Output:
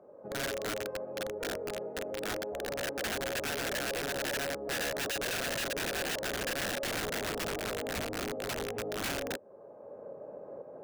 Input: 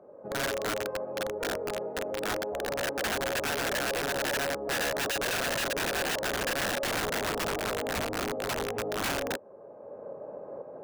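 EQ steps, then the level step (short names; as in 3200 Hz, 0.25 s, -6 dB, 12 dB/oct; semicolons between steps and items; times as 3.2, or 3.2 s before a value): dynamic EQ 1000 Hz, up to -5 dB, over -48 dBFS, Q 1.5; -3.0 dB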